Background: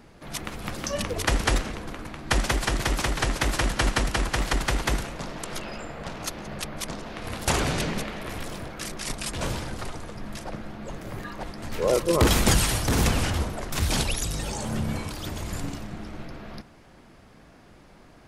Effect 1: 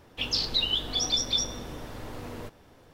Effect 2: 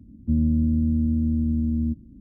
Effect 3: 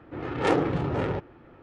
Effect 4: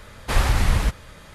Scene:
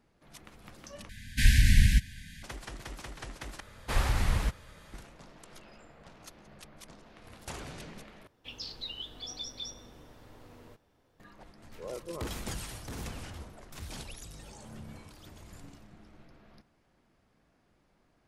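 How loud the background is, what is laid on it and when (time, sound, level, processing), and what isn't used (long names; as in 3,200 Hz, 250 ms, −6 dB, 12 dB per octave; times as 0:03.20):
background −18 dB
0:01.09: overwrite with 4 −1.5 dB + linear-phase brick-wall band-stop 280–1,500 Hz
0:03.60: overwrite with 4 −8.5 dB
0:08.27: overwrite with 1 −14 dB
not used: 2, 3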